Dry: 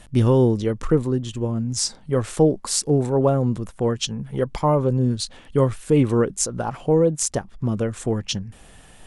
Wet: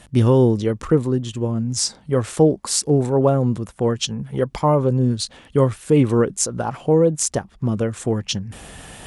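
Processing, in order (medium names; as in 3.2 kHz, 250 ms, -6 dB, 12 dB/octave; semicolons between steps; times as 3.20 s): high-pass 47 Hz; reverse; upward compressor, threshold -31 dBFS; reverse; trim +2 dB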